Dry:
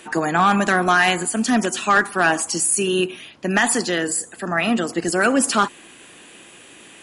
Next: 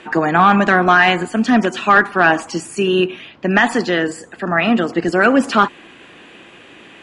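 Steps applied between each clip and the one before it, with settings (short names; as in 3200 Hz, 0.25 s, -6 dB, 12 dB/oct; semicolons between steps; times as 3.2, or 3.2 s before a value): LPF 3100 Hz 12 dB/oct; gain +5 dB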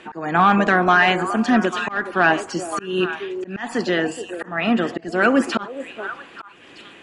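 delay with a stepping band-pass 0.421 s, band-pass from 470 Hz, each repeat 1.4 oct, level -7.5 dB; auto swell 0.258 s; gain -3.5 dB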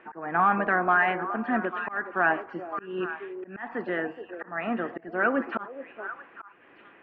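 LPF 2000 Hz 24 dB/oct; low shelf 330 Hz -9.5 dB; gain -5.5 dB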